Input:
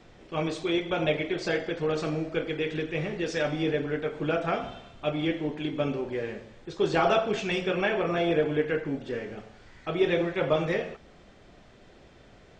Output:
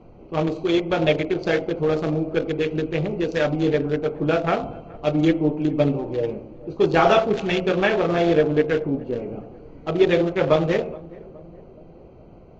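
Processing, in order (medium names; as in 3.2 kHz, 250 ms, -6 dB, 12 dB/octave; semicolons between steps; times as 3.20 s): local Wiener filter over 25 samples; 5.14–6.31 s: comb 6.5 ms, depth 53%; on a send: filtered feedback delay 419 ms, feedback 63%, low-pass 860 Hz, level -20 dB; on the sum: trim +7.5 dB; Vorbis 48 kbps 16 kHz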